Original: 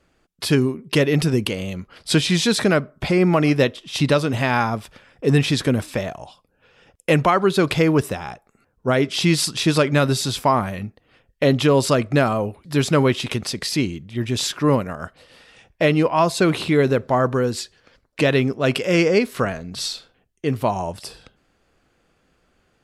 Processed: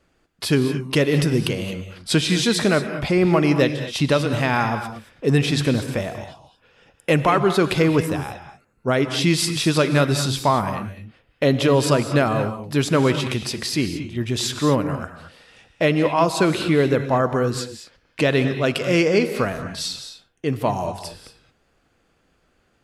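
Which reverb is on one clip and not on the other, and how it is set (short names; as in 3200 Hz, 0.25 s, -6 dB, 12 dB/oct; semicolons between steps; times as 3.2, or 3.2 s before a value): non-linear reverb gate 0.25 s rising, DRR 8.5 dB; gain -1 dB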